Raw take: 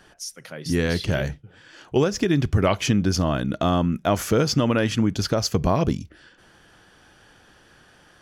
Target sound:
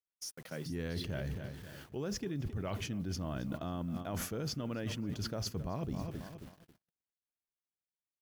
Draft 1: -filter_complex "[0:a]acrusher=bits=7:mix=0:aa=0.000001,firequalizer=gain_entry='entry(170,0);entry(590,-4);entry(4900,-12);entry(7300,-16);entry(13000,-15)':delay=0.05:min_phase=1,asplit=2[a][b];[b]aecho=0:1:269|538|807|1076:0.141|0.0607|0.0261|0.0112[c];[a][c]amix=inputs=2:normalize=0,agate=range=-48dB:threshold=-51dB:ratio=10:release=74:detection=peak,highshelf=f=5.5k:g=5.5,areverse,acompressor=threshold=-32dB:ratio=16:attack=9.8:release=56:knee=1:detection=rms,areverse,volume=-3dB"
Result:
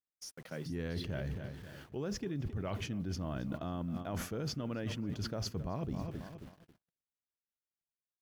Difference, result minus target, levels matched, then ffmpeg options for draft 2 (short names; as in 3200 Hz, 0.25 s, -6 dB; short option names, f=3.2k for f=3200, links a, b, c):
8000 Hz band -3.5 dB
-filter_complex "[0:a]acrusher=bits=7:mix=0:aa=0.000001,firequalizer=gain_entry='entry(170,0);entry(590,-4);entry(4900,-12);entry(7300,-16);entry(13000,-15)':delay=0.05:min_phase=1,asplit=2[a][b];[b]aecho=0:1:269|538|807|1076:0.141|0.0607|0.0261|0.0112[c];[a][c]amix=inputs=2:normalize=0,agate=range=-48dB:threshold=-51dB:ratio=10:release=74:detection=peak,highshelf=f=5.5k:g=13,areverse,acompressor=threshold=-32dB:ratio=16:attack=9.8:release=56:knee=1:detection=rms,areverse,volume=-3dB"